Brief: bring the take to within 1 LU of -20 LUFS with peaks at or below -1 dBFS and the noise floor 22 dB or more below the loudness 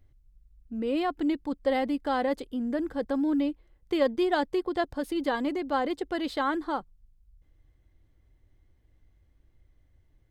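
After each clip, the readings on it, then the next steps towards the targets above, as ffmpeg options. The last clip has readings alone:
loudness -29.0 LUFS; peak level -13.0 dBFS; loudness target -20.0 LUFS
-> -af "volume=2.82"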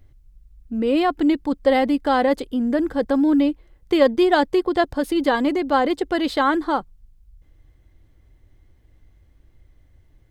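loudness -20.0 LUFS; peak level -4.0 dBFS; noise floor -57 dBFS

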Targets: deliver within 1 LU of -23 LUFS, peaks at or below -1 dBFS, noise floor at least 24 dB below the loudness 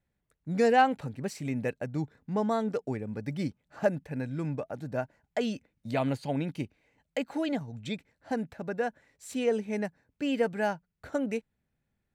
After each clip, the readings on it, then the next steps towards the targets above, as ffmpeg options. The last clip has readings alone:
loudness -32.0 LUFS; peak level -13.0 dBFS; loudness target -23.0 LUFS
-> -af "volume=2.82"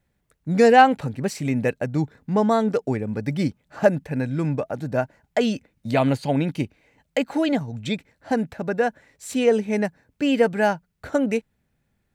loudness -23.0 LUFS; peak level -4.0 dBFS; noise floor -72 dBFS

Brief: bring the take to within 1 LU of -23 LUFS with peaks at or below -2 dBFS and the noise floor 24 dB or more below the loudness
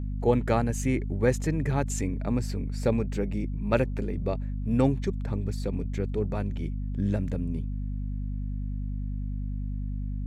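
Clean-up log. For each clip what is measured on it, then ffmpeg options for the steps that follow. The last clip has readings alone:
hum 50 Hz; highest harmonic 250 Hz; hum level -29 dBFS; loudness -29.5 LUFS; peak level -9.5 dBFS; loudness target -23.0 LUFS
-> -af "bandreject=f=50:t=h:w=4,bandreject=f=100:t=h:w=4,bandreject=f=150:t=h:w=4,bandreject=f=200:t=h:w=4,bandreject=f=250:t=h:w=4"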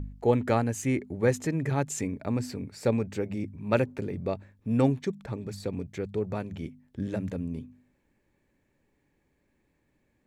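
hum not found; loudness -30.0 LUFS; peak level -10.5 dBFS; loudness target -23.0 LUFS
-> -af "volume=2.24"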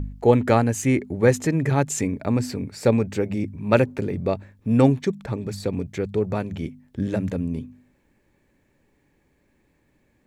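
loudness -23.0 LUFS; peak level -3.5 dBFS; noise floor -66 dBFS

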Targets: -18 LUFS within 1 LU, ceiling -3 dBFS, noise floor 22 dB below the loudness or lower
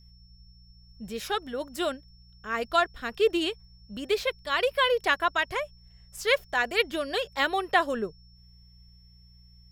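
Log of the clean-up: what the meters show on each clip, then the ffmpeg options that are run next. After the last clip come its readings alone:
hum 60 Hz; highest harmonic 180 Hz; hum level -53 dBFS; steady tone 5.4 kHz; tone level -59 dBFS; loudness -27.5 LUFS; peak level -9.0 dBFS; loudness target -18.0 LUFS
-> -af "bandreject=f=60:t=h:w=4,bandreject=f=120:t=h:w=4,bandreject=f=180:t=h:w=4"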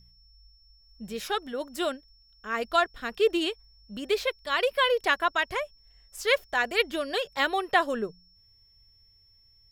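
hum not found; steady tone 5.4 kHz; tone level -59 dBFS
-> -af "bandreject=f=5400:w=30"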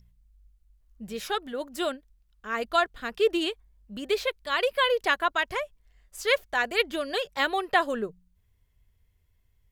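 steady tone not found; loudness -27.5 LUFS; peak level -9.0 dBFS; loudness target -18.0 LUFS
-> -af "volume=2.99,alimiter=limit=0.708:level=0:latency=1"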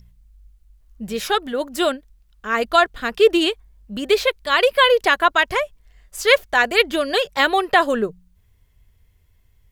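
loudness -18.5 LUFS; peak level -3.0 dBFS; noise floor -59 dBFS

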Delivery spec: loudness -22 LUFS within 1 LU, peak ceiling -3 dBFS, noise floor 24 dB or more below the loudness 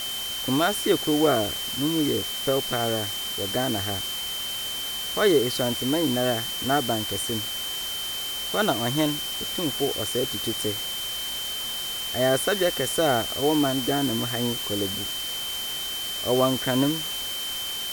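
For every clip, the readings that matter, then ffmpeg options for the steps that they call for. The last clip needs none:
steady tone 3.1 kHz; tone level -30 dBFS; noise floor -31 dBFS; noise floor target -49 dBFS; loudness -25.0 LUFS; peak level -8.5 dBFS; loudness target -22.0 LUFS
-> -af "bandreject=f=3100:w=30"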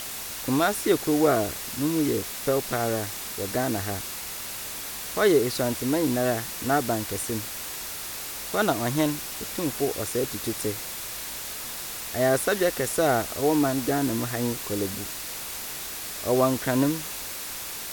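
steady tone not found; noise floor -35 dBFS; noise floor target -51 dBFS
-> -af "afftdn=nr=16:nf=-35"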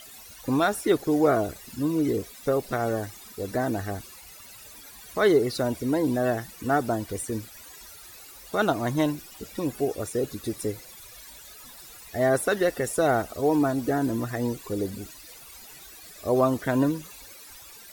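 noise floor -47 dBFS; noise floor target -51 dBFS
-> -af "afftdn=nr=6:nf=-47"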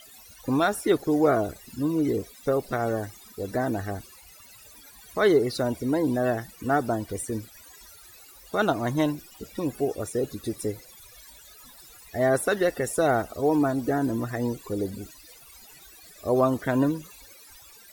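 noise floor -50 dBFS; noise floor target -51 dBFS
-> -af "afftdn=nr=6:nf=-50"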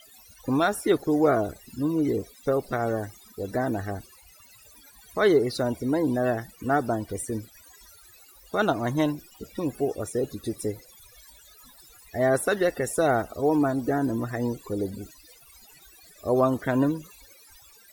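noise floor -54 dBFS; loudness -26.5 LUFS; peak level -9.0 dBFS; loudness target -22.0 LUFS
-> -af "volume=1.68"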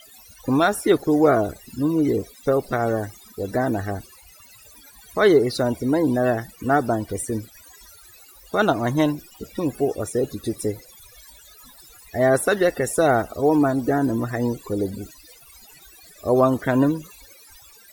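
loudness -22.0 LUFS; peak level -4.5 dBFS; noise floor -49 dBFS

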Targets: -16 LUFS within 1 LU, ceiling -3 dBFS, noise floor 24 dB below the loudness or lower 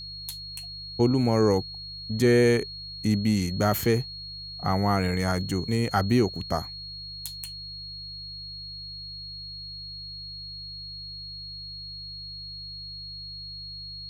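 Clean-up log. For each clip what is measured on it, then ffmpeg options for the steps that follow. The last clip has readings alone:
hum 50 Hz; highest harmonic 150 Hz; hum level -46 dBFS; steady tone 4.3 kHz; tone level -37 dBFS; loudness -28.5 LUFS; peak level -9.0 dBFS; loudness target -16.0 LUFS
-> -af "bandreject=f=50:t=h:w=4,bandreject=f=100:t=h:w=4,bandreject=f=150:t=h:w=4"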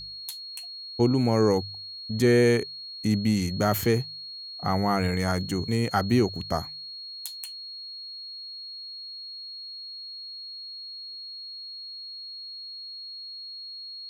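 hum not found; steady tone 4.3 kHz; tone level -37 dBFS
-> -af "bandreject=f=4300:w=30"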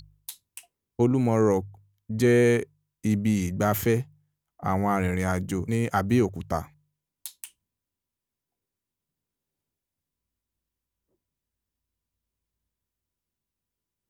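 steady tone not found; loudness -25.0 LUFS; peak level -9.0 dBFS; loudness target -16.0 LUFS
-> -af "volume=2.82,alimiter=limit=0.708:level=0:latency=1"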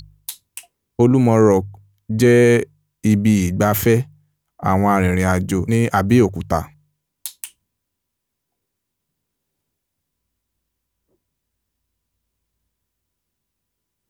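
loudness -16.5 LUFS; peak level -3.0 dBFS; noise floor -79 dBFS

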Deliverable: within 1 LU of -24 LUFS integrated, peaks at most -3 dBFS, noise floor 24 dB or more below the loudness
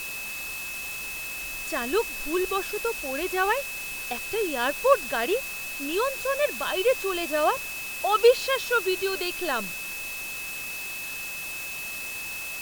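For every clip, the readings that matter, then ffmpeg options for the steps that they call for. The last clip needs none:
steady tone 2.6 kHz; tone level -34 dBFS; noise floor -35 dBFS; noise floor target -51 dBFS; loudness -27.0 LUFS; peak level -6.0 dBFS; loudness target -24.0 LUFS
-> -af "bandreject=f=2600:w=30"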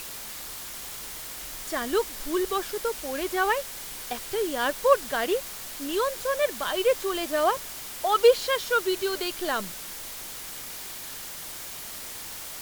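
steady tone not found; noise floor -39 dBFS; noise floor target -52 dBFS
-> -af "afftdn=nr=13:nf=-39"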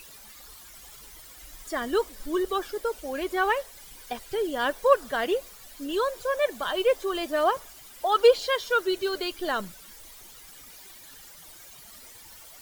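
noise floor -48 dBFS; noise floor target -51 dBFS
-> -af "afftdn=nr=6:nf=-48"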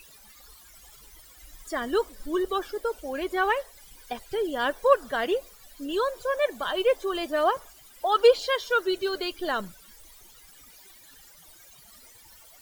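noise floor -53 dBFS; loudness -26.5 LUFS; peak level -6.5 dBFS; loudness target -24.0 LUFS
-> -af "volume=1.33"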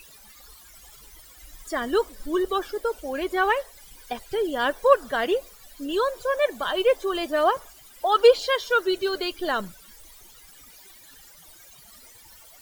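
loudness -24.0 LUFS; peak level -4.0 dBFS; noise floor -50 dBFS

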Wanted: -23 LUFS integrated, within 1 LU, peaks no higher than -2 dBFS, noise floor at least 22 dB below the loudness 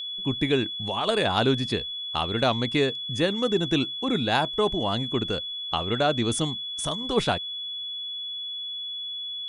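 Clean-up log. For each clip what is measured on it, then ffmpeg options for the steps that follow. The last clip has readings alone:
steady tone 3.4 kHz; tone level -31 dBFS; loudness -26.0 LUFS; peak level -8.5 dBFS; loudness target -23.0 LUFS
-> -af "bandreject=f=3400:w=30"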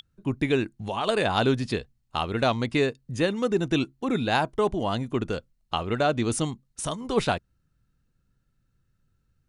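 steady tone not found; loudness -27.0 LUFS; peak level -9.0 dBFS; loudness target -23.0 LUFS
-> -af "volume=1.58"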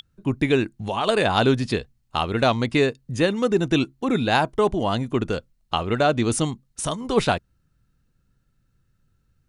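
loudness -23.0 LUFS; peak level -5.0 dBFS; noise floor -68 dBFS

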